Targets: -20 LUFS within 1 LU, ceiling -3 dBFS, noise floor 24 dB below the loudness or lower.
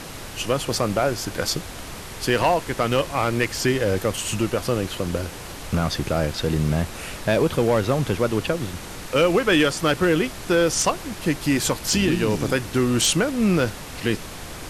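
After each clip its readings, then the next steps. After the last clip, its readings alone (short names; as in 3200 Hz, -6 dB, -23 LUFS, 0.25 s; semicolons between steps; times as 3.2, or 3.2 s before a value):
clipped 0.3%; flat tops at -11.0 dBFS; noise floor -36 dBFS; noise floor target -47 dBFS; loudness -22.5 LUFS; peak -11.0 dBFS; loudness target -20.0 LUFS
-> clip repair -11 dBFS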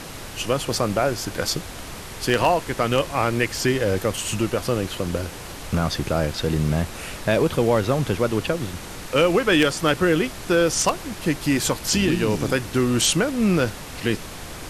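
clipped 0.0%; noise floor -36 dBFS; noise floor target -46 dBFS
-> noise print and reduce 10 dB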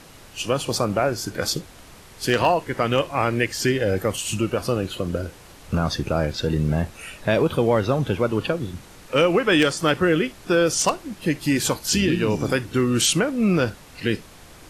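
noise floor -46 dBFS; noise floor target -47 dBFS
-> noise print and reduce 6 dB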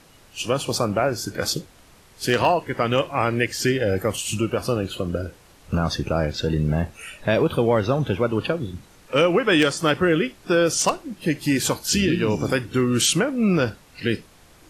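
noise floor -52 dBFS; loudness -22.5 LUFS; peak -2.5 dBFS; loudness target -20.0 LUFS
-> gain +2.5 dB; limiter -3 dBFS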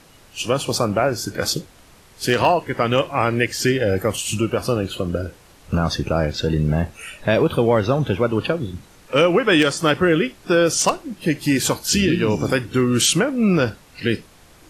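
loudness -20.0 LUFS; peak -3.0 dBFS; noise floor -49 dBFS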